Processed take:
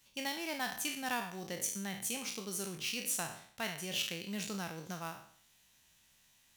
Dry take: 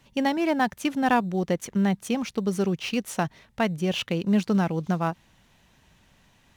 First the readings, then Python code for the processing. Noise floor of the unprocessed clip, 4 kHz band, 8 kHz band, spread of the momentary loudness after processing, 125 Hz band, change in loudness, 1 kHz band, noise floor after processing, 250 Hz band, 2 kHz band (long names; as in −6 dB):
−61 dBFS, −4.0 dB, +3.0 dB, 7 LU, −18.5 dB, −11.5 dB, −14.5 dB, −68 dBFS, −19.0 dB, −8.0 dB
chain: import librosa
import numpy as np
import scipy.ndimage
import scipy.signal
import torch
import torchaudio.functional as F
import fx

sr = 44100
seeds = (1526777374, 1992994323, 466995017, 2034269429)

y = fx.spec_trails(x, sr, decay_s=0.57)
y = F.preemphasis(torch.from_numpy(y), 0.9).numpy()